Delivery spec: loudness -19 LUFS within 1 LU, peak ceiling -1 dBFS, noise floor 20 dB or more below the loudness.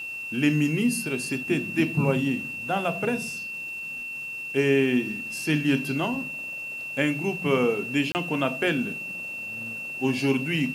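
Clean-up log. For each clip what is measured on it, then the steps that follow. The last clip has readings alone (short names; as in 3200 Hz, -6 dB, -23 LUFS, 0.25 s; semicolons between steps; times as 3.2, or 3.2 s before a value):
dropouts 1; longest dropout 29 ms; steady tone 2700 Hz; tone level -32 dBFS; loudness -26.0 LUFS; peak -9.0 dBFS; loudness target -19.0 LUFS
-> interpolate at 8.12, 29 ms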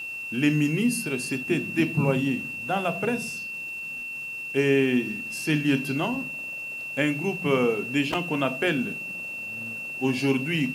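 dropouts 0; steady tone 2700 Hz; tone level -32 dBFS
-> notch 2700 Hz, Q 30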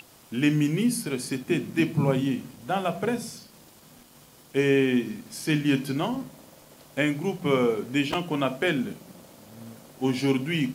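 steady tone none; loudness -26.5 LUFS; peak -9.0 dBFS; loudness target -19.0 LUFS
-> gain +7.5 dB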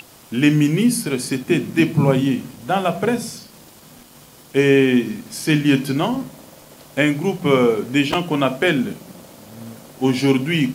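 loudness -19.0 LUFS; peak -1.5 dBFS; noise floor -46 dBFS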